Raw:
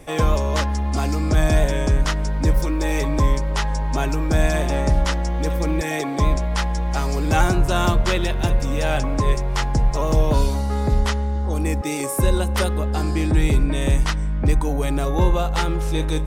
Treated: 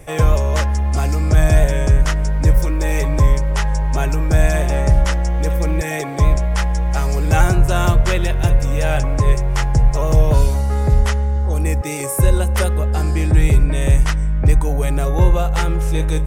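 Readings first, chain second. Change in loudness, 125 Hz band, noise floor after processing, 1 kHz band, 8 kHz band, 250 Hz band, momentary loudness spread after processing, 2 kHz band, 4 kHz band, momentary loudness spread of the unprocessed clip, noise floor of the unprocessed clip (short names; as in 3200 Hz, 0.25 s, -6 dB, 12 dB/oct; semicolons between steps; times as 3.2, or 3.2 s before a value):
+4.0 dB, +5.5 dB, -23 dBFS, +0.5 dB, +3.0 dB, -0.5 dB, 4 LU, +2.0 dB, -1.0 dB, 4 LU, -24 dBFS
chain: ten-band EQ 125 Hz +4 dB, 250 Hz -10 dB, 1000 Hz -5 dB, 4000 Hz -8 dB; gain +5 dB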